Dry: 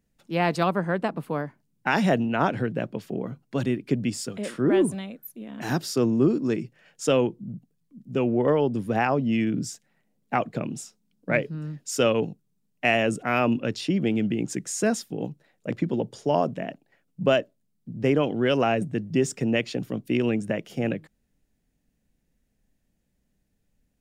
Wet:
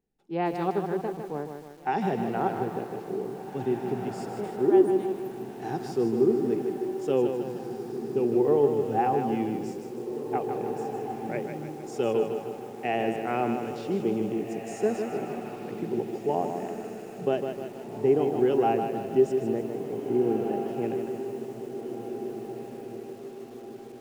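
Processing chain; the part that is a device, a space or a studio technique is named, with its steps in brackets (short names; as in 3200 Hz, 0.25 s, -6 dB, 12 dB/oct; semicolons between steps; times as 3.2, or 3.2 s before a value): inside a helmet (high shelf 5200 Hz -4 dB; small resonant body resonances 400/780 Hz, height 14 dB, ringing for 30 ms); 19.52–20.65 inverse Chebyshev low-pass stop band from 6800 Hz, stop band 70 dB; harmonic-percussive split percussive -7 dB; diffused feedback echo 1.952 s, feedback 42%, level -8.5 dB; lo-fi delay 0.154 s, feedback 55%, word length 7-bit, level -6.5 dB; gain -9 dB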